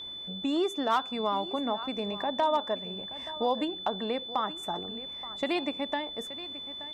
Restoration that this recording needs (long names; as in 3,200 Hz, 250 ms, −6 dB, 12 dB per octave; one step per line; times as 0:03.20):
clipped peaks rebuilt −18 dBFS
notch filter 3,500 Hz, Q 30
echo removal 876 ms −15.5 dB